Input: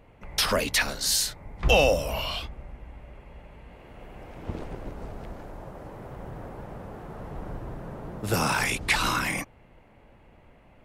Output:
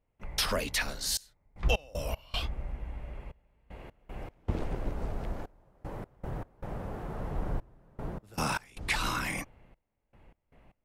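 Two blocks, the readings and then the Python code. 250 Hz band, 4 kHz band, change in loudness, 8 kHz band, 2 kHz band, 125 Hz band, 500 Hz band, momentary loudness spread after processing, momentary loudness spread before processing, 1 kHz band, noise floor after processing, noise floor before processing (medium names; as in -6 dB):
-5.0 dB, -7.0 dB, -9.0 dB, -7.5 dB, -7.5 dB, -3.0 dB, -10.0 dB, 17 LU, 19 LU, -7.0 dB, -79 dBFS, -56 dBFS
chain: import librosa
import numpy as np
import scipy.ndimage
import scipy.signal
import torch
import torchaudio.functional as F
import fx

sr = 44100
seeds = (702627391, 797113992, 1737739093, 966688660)

y = fx.low_shelf(x, sr, hz=67.0, db=7.0)
y = fx.rider(y, sr, range_db=5, speed_s=0.5)
y = fx.step_gate(y, sr, bpm=77, pattern='.xxxxx..x.x', floor_db=-24.0, edge_ms=4.5)
y = y * librosa.db_to_amplitude(-4.5)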